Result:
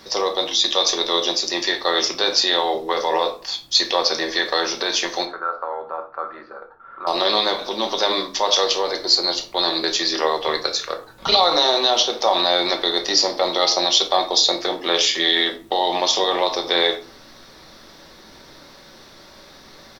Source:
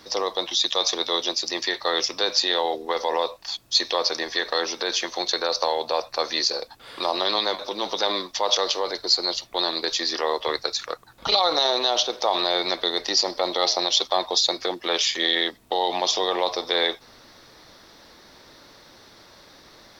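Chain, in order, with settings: 5.25–7.07 ladder low-pass 1400 Hz, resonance 85%; speakerphone echo 90 ms, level -22 dB; shoebox room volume 250 m³, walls furnished, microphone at 1.1 m; gain +3 dB

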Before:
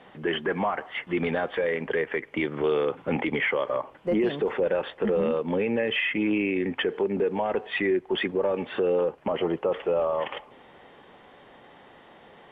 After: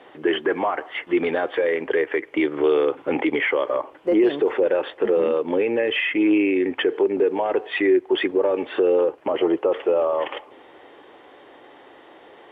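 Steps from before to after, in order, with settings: HPF 52 Hz; resonant low shelf 250 Hz -6.5 dB, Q 3; gain +3 dB

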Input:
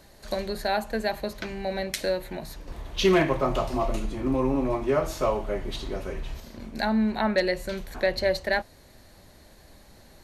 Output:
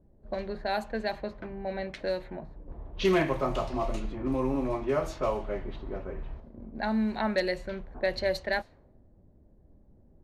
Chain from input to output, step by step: low-pass opened by the level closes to 310 Hz, open at -20.5 dBFS; gain -4 dB

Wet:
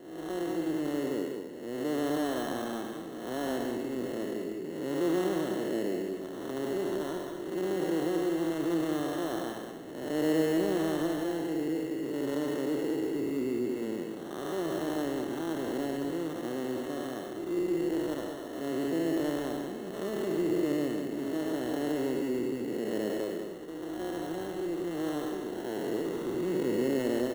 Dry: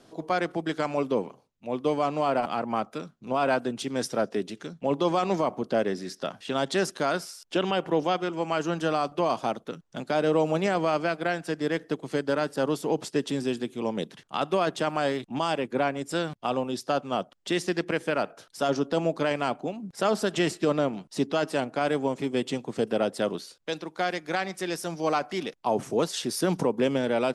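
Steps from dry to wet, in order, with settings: time blur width 0.334 s; sample-rate reducer 2400 Hz, jitter 0%; bell 340 Hz +13 dB 0.85 oct; notch 5000 Hz, Q 5.5; on a send: echo 0.194 s -7 dB; on the sum: gain -8 dB

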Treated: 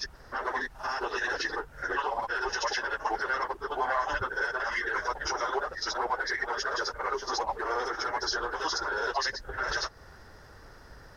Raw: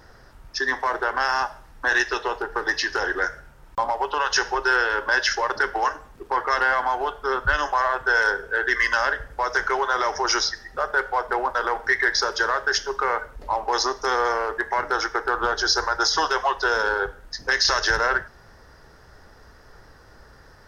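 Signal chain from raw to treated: slices in reverse order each 87 ms, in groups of 7; in parallel at -1.5 dB: compressor 12:1, threshold -34 dBFS, peak gain reduction 19 dB; on the sum: limiter -13 dBFS, peak gain reduction 5.5 dB; crackle 48/s -49 dBFS; plain phase-vocoder stretch 0.54×; gain -3 dB

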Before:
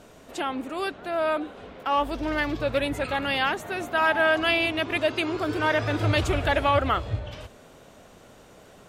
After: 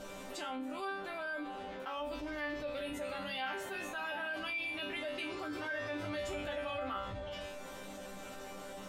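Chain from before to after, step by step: bell 250 Hz -3.5 dB 0.6 oct; resonator bank G3 sus4, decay 0.39 s; fast leveller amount 70%; gain -2.5 dB

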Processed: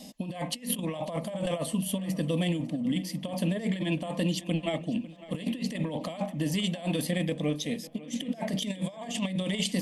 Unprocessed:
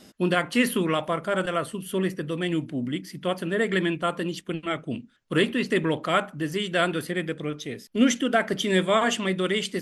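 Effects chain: fixed phaser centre 380 Hz, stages 6; negative-ratio compressor -32 dBFS, ratio -0.5; on a send: tape echo 0.548 s, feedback 54%, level -17 dB, low-pass 4500 Hz; on the sum: harmonic-percussive split harmonic +3 dB

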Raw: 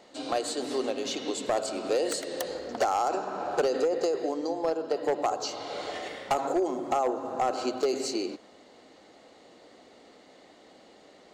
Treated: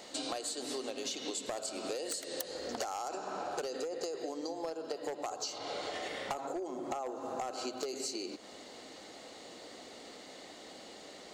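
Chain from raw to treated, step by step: high shelf 3300 Hz +11.5 dB, from 5.58 s +4 dB, from 7.06 s +10 dB; compressor 10:1, threshold -38 dBFS, peak gain reduction 17 dB; gain +2.5 dB

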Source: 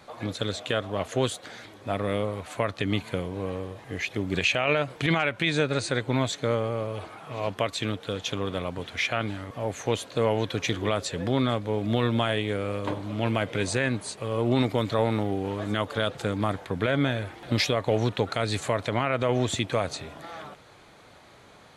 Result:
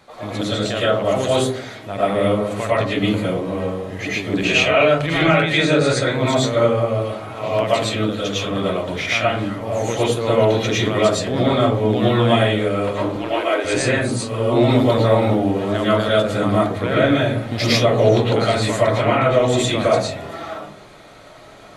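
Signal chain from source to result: 13.06–13.65 Chebyshev high-pass 280 Hz, order 6; digital reverb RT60 0.54 s, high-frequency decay 0.3×, pre-delay 70 ms, DRR -8.5 dB

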